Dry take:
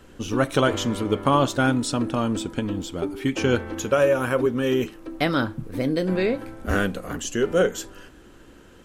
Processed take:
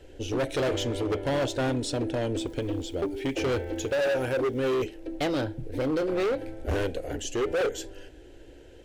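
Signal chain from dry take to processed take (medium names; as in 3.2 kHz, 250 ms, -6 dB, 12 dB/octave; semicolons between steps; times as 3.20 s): low-pass 2.9 kHz 6 dB/octave; 2.38–4.71 s: crackle 580 per s -52 dBFS; static phaser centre 480 Hz, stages 4; overload inside the chain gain 26 dB; trim +2.5 dB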